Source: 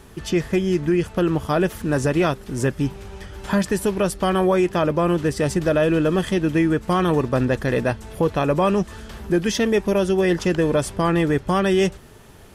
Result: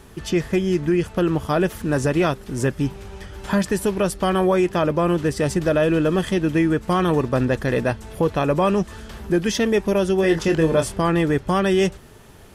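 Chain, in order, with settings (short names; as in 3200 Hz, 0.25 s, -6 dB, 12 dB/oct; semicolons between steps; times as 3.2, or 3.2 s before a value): 10.21–11.01 doubler 25 ms -6 dB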